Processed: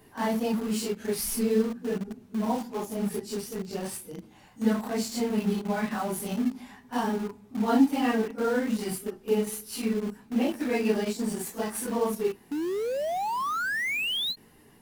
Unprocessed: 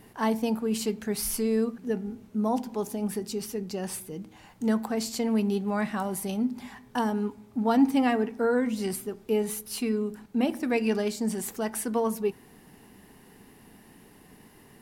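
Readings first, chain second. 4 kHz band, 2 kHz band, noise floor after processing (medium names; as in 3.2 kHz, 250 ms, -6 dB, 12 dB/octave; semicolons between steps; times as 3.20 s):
+6.0 dB, +5.0 dB, -56 dBFS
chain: phase randomisation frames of 100 ms; painted sound rise, 12.51–14.36 s, 280–4300 Hz -29 dBFS; in parallel at -10 dB: bit crusher 5-bit; on the sum: endings held to a fixed fall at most 450 dB/s; trim -3 dB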